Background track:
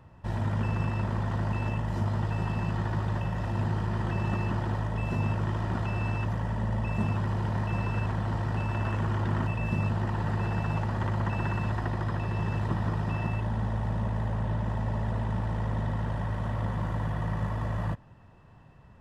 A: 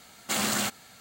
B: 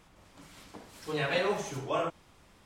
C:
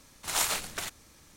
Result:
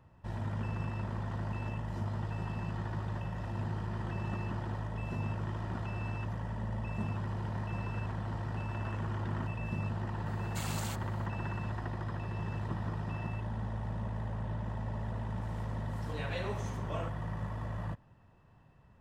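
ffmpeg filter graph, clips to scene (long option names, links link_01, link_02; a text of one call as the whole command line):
ffmpeg -i bed.wav -i cue0.wav -i cue1.wav -filter_complex "[0:a]volume=-7.5dB[link_01];[1:a]atrim=end=1,asetpts=PTS-STARTPTS,volume=-14.5dB,afade=type=in:duration=0.004:curve=hsin,afade=type=out:start_time=0.996:duration=0.004:curve=hsin,adelay=452466S[link_02];[2:a]atrim=end=2.65,asetpts=PTS-STARTPTS,volume=-10dB,afade=type=in:duration=0.004:curve=hsin,afade=type=out:start_time=2.646:duration=0.004:curve=hsin,adelay=15000[link_03];[link_01][link_02][link_03]amix=inputs=3:normalize=0" out.wav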